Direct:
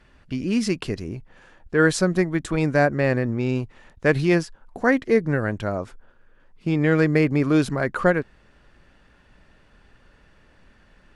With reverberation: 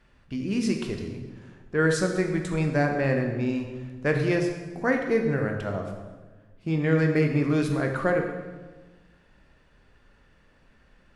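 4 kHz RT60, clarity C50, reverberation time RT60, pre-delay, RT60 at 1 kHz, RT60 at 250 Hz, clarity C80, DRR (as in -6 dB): 1.0 s, 5.0 dB, 1.3 s, 14 ms, 1.2 s, 1.6 s, 7.0 dB, 3.0 dB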